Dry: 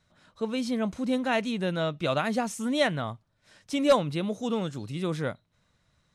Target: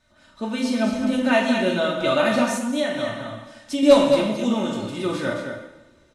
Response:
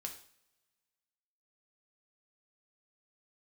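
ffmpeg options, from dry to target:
-filter_complex "[0:a]aecho=1:1:40.82|218.7:0.316|0.447[a];[1:a]atrim=start_sample=2205,asetrate=25578,aresample=44100[b];[a][b]afir=irnorm=-1:irlink=0,asettb=1/sr,asplit=3[c][d][e];[c]atrim=end=2.564[f];[d]atrim=start=2.56:end=3.83,asetpts=PTS-STARTPTS,afade=t=in:d=0.004:c=qsin,afade=t=out:st=1.266:d=0.004:c=qsin,acompressor=threshold=-31dB:ratio=2.5[g];[e]atrim=start=3.826[h];[f][g]acrossfade=d=0.004:c1=hsin:c2=qsin[i];[i][h]acrossfade=d=0.004:c1=qsin:c2=hsin,aecho=1:1:3.3:0.63,volume=4dB"

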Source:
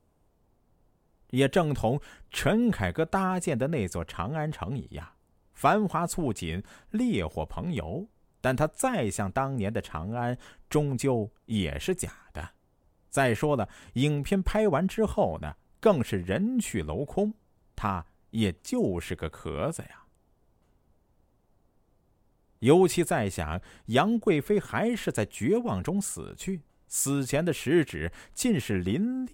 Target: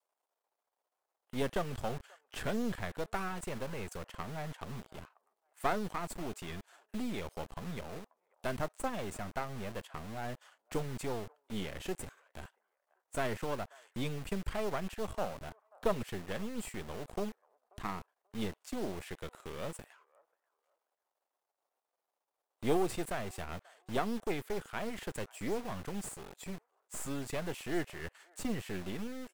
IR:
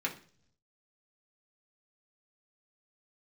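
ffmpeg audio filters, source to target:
-filter_complex "[0:a]aeval=exprs='if(lt(val(0),0),0.251*val(0),val(0))':c=same,adynamicequalizer=threshold=0.00891:dfrequency=270:dqfactor=0.85:tfrequency=270:tqfactor=0.85:attack=5:release=100:ratio=0.375:range=3:mode=cutabove:tftype=bell,acrossover=split=550|1800[a][b][c];[a]acrusher=bits=6:mix=0:aa=0.000001[d];[b]aecho=1:1:536|1072:0.0891|0.0196[e];[c]alimiter=level_in=3dB:limit=-24dB:level=0:latency=1:release=284,volume=-3dB[f];[d][e][f]amix=inputs=3:normalize=0,volume=-6dB"

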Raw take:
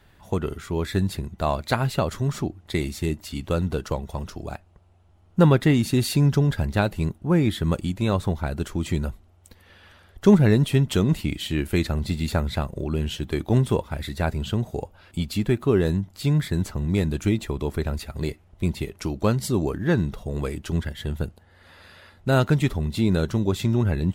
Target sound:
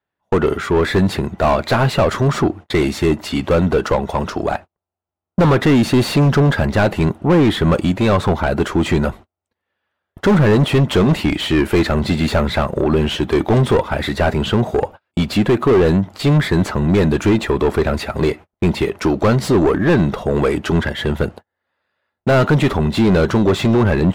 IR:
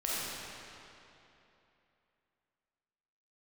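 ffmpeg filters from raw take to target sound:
-filter_complex "[0:a]agate=range=-41dB:threshold=-41dB:ratio=16:detection=peak,asplit=2[a][b];[b]highpass=f=720:p=1,volume=31dB,asoftclip=type=tanh:threshold=-3dB[c];[a][c]amix=inputs=2:normalize=0,lowpass=f=1k:p=1,volume=-6dB,volume=8.5dB,asoftclip=hard,volume=-8.5dB"

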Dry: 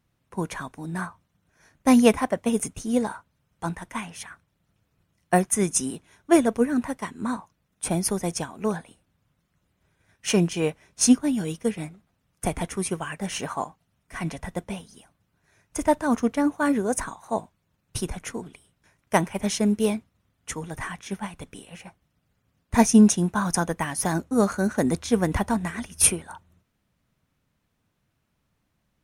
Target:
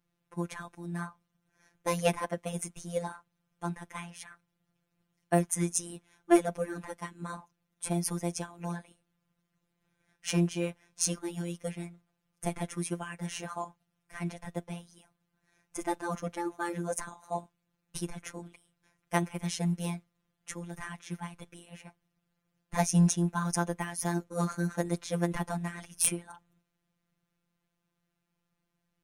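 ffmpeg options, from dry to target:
-af "afftfilt=real='hypot(re,im)*cos(PI*b)':imag='0':win_size=1024:overlap=0.75,aeval=exprs='1.06*(cos(1*acos(clip(val(0)/1.06,-1,1)))-cos(1*PI/2))+0.237*(cos(2*acos(clip(val(0)/1.06,-1,1)))-cos(2*PI/2))+0.376*(cos(5*acos(clip(val(0)/1.06,-1,1)))-cos(5*PI/2))+0.188*(cos(7*acos(clip(val(0)/1.06,-1,1)))-cos(7*PI/2))+0.0422*(cos(8*acos(clip(val(0)/1.06,-1,1)))-cos(8*PI/2))':c=same,volume=-8dB"

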